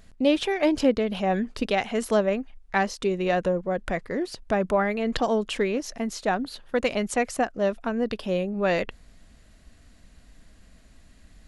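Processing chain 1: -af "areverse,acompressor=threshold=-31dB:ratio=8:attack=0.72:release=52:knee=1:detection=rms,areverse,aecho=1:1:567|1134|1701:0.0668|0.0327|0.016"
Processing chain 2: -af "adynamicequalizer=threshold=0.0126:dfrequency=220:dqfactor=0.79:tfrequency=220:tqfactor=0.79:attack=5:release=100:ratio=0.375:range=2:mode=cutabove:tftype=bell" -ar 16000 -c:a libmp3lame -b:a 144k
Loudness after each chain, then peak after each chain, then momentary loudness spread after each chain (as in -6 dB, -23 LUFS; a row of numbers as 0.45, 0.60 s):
-36.5, -27.5 LUFS; -24.0, -10.0 dBFS; 20, 7 LU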